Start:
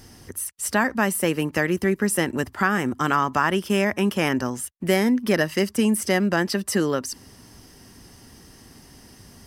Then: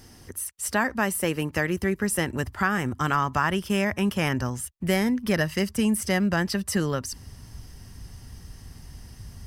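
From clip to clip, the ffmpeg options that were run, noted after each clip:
-af "asubboost=boost=7:cutoff=110,volume=-2.5dB"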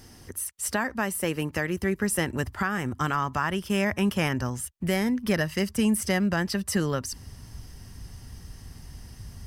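-af "alimiter=limit=-14dB:level=0:latency=1:release=464"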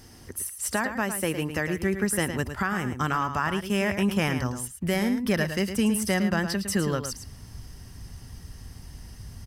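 -af "aecho=1:1:109:0.355"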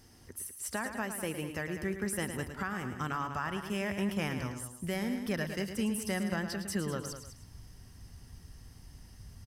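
-af "aecho=1:1:200:0.299,volume=-9dB"

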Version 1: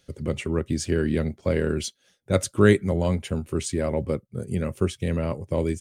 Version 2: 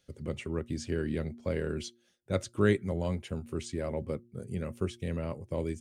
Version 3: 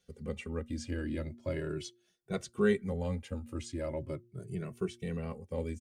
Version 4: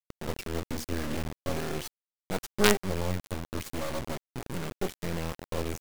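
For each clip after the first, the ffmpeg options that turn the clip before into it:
-filter_complex "[0:a]acrossover=split=7100[a][b];[b]acompressor=threshold=-48dB:ratio=4:attack=1:release=60[c];[a][c]amix=inputs=2:normalize=0,bandreject=f=118.1:t=h:w=4,bandreject=f=236.2:t=h:w=4,bandreject=f=354.3:t=h:w=4,volume=-8.5dB"
-filter_complex "[0:a]asplit=2[a][b];[b]adelay=2.2,afreqshift=0.39[c];[a][c]amix=inputs=2:normalize=1"
-af "acrusher=bits=4:dc=4:mix=0:aa=0.000001,volume=7dB"

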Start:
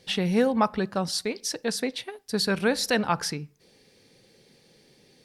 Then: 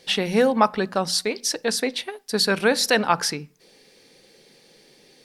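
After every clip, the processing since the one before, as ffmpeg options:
-af "equalizer=f=74:t=o:w=2.3:g=-13,bandreject=f=60:t=h:w=6,bandreject=f=120:t=h:w=6,bandreject=f=180:t=h:w=6,bandreject=f=240:t=h:w=6,volume=6dB"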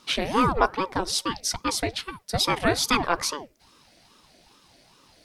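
-af "aeval=exprs='val(0)*sin(2*PI*460*n/s+460*0.65/2.4*sin(2*PI*2.4*n/s))':c=same"

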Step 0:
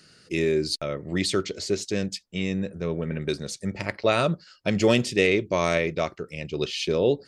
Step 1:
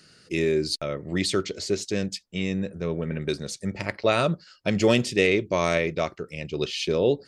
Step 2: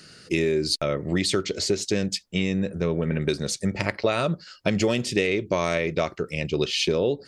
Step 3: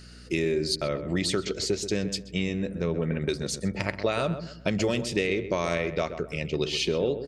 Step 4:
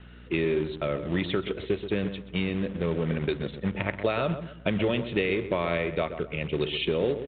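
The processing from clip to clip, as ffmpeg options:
-af anull
-af "acompressor=threshold=-26dB:ratio=6,volume=6.5dB"
-filter_complex "[0:a]aeval=exprs='val(0)+0.00631*(sin(2*PI*60*n/s)+sin(2*PI*2*60*n/s)/2+sin(2*PI*3*60*n/s)/3+sin(2*PI*4*60*n/s)/4+sin(2*PI*5*60*n/s)/5)':c=same,asplit=2[a][b];[b]adelay=129,lowpass=f=1.5k:p=1,volume=-9.5dB,asplit=2[c][d];[d]adelay=129,lowpass=f=1.5k:p=1,volume=0.34,asplit=2[e][f];[f]adelay=129,lowpass=f=1.5k:p=1,volume=0.34,asplit=2[g][h];[h]adelay=129,lowpass=f=1.5k:p=1,volume=0.34[i];[c][e][g][i]amix=inputs=4:normalize=0[j];[a][j]amix=inputs=2:normalize=0,volume=-3.5dB"
-filter_complex "[0:a]acrossover=split=520|3000[a][b][c];[a]acrusher=bits=3:mode=log:mix=0:aa=0.000001[d];[d][b][c]amix=inputs=3:normalize=0,aresample=8000,aresample=44100"

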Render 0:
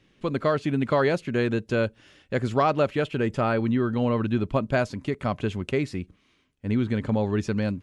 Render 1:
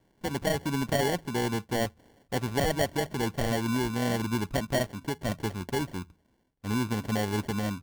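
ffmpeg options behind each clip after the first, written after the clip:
-af "acrusher=samples=35:mix=1:aa=0.000001,bandreject=f=80.22:t=h:w=4,bandreject=f=160.44:t=h:w=4,volume=-4.5dB"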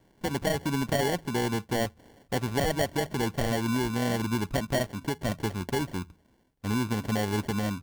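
-af "acompressor=threshold=-35dB:ratio=1.5,volume=4.5dB"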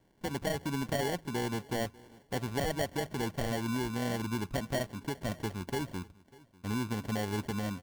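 -af "aecho=1:1:595|1190:0.0708|0.0113,volume=-5.5dB"

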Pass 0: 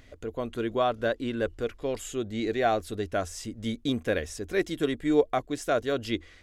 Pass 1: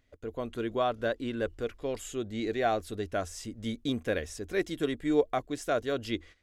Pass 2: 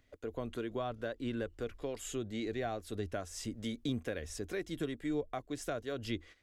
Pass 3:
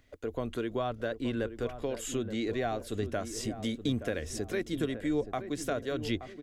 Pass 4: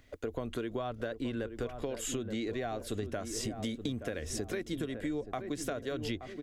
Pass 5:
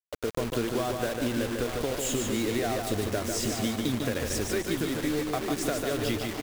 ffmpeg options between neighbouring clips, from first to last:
-af "agate=range=-14dB:threshold=-45dB:ratio=16:detection=peak,volume=-3dB"
-filter_complex "[0:a]acrossover=split=190[a][b];[a]tremolo=f=2.3:d=0.66[c];[b]acompressor=threshold=-38dB:ratio=4[d];[c][d]amix=inputs=2:normalize=0,volume=1dB"
-filter_complex "[0:a]asplit=2[a][b];[b]adelay=874,lowpass=f=1.1k:p=1,volume=-10dB,asplit=2[c][d];[d]adelay=874,lowpass=f=1.1k:p=1,volume=0.46,asplit=2[e][f];[f]adelay=874,lowpass=f=1.1k:p=1,volume=0.46,asplit=2[g][h];[h]adelay=874,lowpass=f=1.1k:p=1,volume=0.46,asplit=2[i][j];[j]adelay=874,lowpass=f=1.1k:p=1,volume=0.46[k];[a][c][e][g][i][k]amix=inputs=6:normalize=0,volume=5dB"
-af "acompressor=threshold=-36dB:ratio=6,volume=3.5dB"
-filter_complex "[0:a]acrusher=bits=6:mix=0:aa=0.000001,asplit=2[a][b];[b]aecho=0:1:148|296|444|592|740:0.596|0.232|0.0906|0.0353|0.0138[c];[a][c]amix=inputs=2:normalize=0,volume=5.5dB"

